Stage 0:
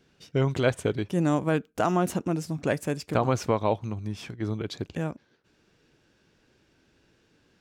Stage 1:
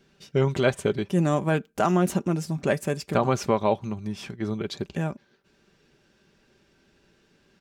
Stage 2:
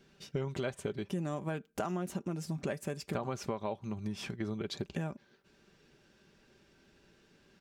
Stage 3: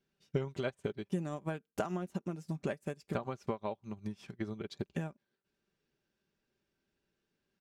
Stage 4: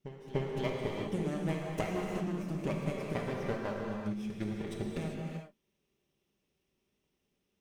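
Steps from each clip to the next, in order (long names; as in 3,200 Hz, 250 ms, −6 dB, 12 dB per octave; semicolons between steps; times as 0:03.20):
comb filter 5.1 ms, depth 43%; level +1.5 dB
downward compressor 6 to 1, threshold −31 dBFS, peak gain reduction 14 dB; level −2 dB
expander for the loud parts 2.5 to 1, over −46 dBFS; level +4 dB
lower of the sound and its delayed copy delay 0.34 ms; echo ahead of the sound 295 ms −12.5 dB; reverb whose tail is shaped and stops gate 420 ms flat, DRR −1 dB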